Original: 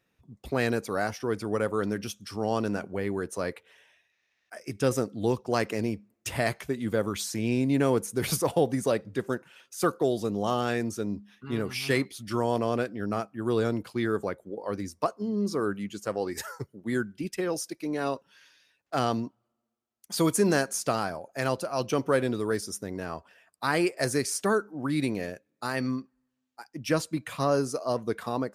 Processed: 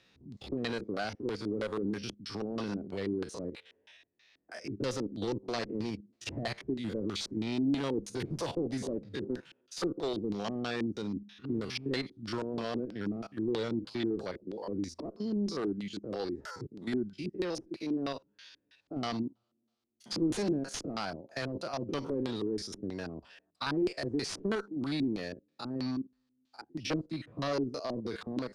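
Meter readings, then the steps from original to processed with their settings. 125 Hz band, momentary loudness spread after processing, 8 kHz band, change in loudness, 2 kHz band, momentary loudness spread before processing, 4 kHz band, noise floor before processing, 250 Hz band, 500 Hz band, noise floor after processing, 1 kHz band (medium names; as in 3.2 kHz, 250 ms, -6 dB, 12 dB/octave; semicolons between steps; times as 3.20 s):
-7.5 dB, 9 LU, -11.5 dB, -6.5 dB, -9.0 dB, 9 LU, -2.5 dB, -77 dBFS, -3.5 dB, -8.0 dB, -78 dBFS, -10.0 dB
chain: spectrogram pixelated in time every 50 ms; treble shelf 5.6 kHz +12 dB; one-sided clip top -25.5 dBFS; LFO low-pass square 3.1 Hz 320–4200 Hz; three bands compressed up and down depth 40%; trim -5 dB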